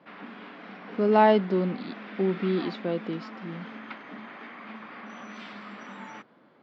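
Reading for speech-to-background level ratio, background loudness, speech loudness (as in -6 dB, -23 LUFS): 16.5 dB, -42.0 LUFS, -25.5 LUFS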